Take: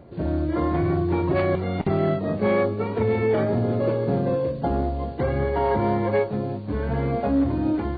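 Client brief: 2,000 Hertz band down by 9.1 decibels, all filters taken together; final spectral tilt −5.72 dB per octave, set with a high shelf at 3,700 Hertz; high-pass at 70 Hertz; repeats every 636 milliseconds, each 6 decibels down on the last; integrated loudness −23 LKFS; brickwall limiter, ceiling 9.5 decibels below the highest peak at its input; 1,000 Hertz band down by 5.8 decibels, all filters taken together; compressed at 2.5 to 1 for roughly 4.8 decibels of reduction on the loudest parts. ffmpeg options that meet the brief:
ffmpeg -i in.wav -af "highpass=70,equalizer=frequency=1000:width_type=o:gain=-6.5,equalizer=frequency=2000:width_type=o:gain=-7.5,highshelf=frequency=3700:gain=-6.5,acompressor=threshold=-26dB:ratio=2.5,alimiter=level_in=2.5dB:limit=-24dB:level=0:latency=1,volume=-2.5dB,aecho=1:1:636|1272|1908|2544|3180|3816:0.501|0.251|0.125|0.0626|0.0313|0.0157,volume=10dB" out.wav

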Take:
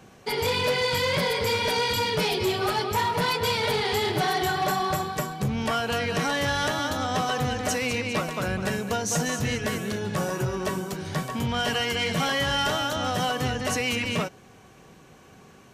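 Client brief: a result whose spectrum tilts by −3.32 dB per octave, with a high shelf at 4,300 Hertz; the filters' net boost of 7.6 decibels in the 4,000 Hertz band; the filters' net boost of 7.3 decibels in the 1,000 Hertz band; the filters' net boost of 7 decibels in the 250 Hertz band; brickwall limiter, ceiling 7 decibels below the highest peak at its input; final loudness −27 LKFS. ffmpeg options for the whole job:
ffmpeg -i in.wav -af "equalizer=frequency=250:width_type=o:gain=8.5,equalizer=frequency=1000:width_type=o:gain=8,equalizer=frequency=4000:width_type=o:gain=5.5,highshelf=frequency=4300:gain=7.5,volume=-4dB,alimiter=limit=-19.5dB:level=0:latency=1" out.wav

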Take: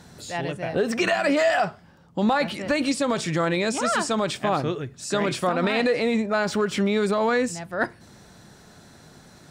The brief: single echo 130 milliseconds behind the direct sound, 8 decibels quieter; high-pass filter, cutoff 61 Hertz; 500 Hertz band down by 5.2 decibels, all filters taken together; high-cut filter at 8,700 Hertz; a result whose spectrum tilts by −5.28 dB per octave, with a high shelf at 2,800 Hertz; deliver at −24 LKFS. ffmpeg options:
ffmpeg -i in.wav -af "highpass=61,lowpass=8700,equalizer=frequency=500:width_type=o:gain=-6.5,highshelf=frequency=2800:gain=-6,aecho=1:1:130:0.398,volume=2.5dB" out.wav

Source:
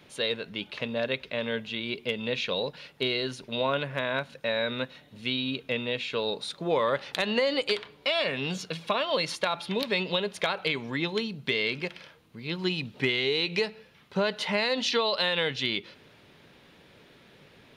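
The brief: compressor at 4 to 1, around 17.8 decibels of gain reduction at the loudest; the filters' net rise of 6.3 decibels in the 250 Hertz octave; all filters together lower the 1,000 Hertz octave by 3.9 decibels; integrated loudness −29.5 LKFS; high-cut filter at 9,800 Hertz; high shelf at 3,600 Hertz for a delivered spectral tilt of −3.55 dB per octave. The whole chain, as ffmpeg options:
ffmpeg -i in.wav -af "lowpass=9800,equalizer=frequency=250:width_type=o:gain=8,equalizer=frequency=1000:width_type=o:gain=-5,highshelf=frequency=3600:gain=-4,acompressor=threshold=-42dB:ratio=4,volume=13.5dB" out.wav

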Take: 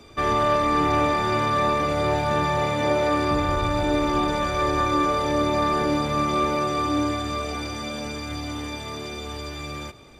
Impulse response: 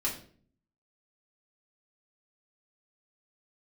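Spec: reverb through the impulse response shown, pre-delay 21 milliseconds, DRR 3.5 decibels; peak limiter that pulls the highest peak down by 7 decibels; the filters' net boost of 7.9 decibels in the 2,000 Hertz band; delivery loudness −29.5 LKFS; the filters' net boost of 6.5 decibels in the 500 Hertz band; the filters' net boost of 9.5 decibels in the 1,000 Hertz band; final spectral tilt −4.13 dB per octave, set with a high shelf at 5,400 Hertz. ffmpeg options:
-filter_complex "[0:a]equalizer=frequency=500:width_type=o:gain=5,equalizer=frequency=1000:width_type=o:gain=8.5,equalizer=frequency=2000:width_type=o:gain=7.5,highshelf=frequency=5400:gain=-4,alimiter=limit=-8.5dB:level=0:latency=1,asplit=2[link_01][link_02];[1:a]atrim=start_sample=2205,adelay=21[link_03];[link_02][link_03]afir=irnorm=-1:irlink=0,volume=-9dB[link_04];[link_01][link_04]amix=inputs=2:normalize=0,volume=-12.5dB"

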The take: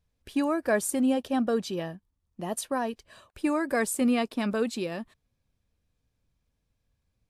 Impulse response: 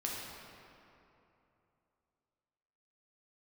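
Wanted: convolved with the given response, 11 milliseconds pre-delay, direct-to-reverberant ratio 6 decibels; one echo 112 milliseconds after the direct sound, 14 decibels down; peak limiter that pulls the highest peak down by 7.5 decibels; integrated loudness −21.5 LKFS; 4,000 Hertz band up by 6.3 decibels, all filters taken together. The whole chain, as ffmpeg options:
-filter_complex "[0:a]equalizer=frequency=4000:width_type=o:gain=8,alimiter=limit=-20dB:level=0:latency=1,aecho=1:1:112:0.2,asplit=2[link_01][link_02];[1:a]atrim=start_sample=2205,adelay=11[link_03];[link_02][link_03]afir=irnorm=-1:irlink=0,volume=-9dB[link_04];[link_01][link_04]amix=inputs=2:normalize=0,volume=8dB"

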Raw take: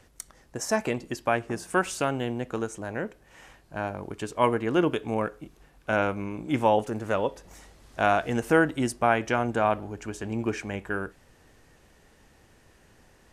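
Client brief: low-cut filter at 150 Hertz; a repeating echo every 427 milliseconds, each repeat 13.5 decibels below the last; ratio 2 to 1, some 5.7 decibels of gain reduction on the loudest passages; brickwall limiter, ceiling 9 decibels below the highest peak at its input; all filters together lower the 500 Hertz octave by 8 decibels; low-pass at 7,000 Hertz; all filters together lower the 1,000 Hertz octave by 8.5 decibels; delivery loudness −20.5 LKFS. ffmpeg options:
ffmpeg -i in.wav -af "highpass=150,lowpass=7000,equalizer=frequency=500:width_type=o:gain=-7.5,equalizer=frequency=1000:width_type=o:gain=-9,acompressor=threshold=-33dB:ratio=2,alimiter=level_in=2.5dB:limit=-24dB:level=0:latency=1,volume=-2.5dB,aecho=1:1:427|854:0.211|0.0444,volume=19dB" out.wav

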